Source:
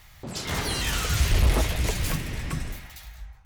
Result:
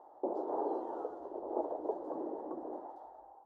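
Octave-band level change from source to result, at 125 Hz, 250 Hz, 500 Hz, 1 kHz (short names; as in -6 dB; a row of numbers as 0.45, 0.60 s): under -40 dB, -7.5 dB, -0.5 dB, -4.0 dB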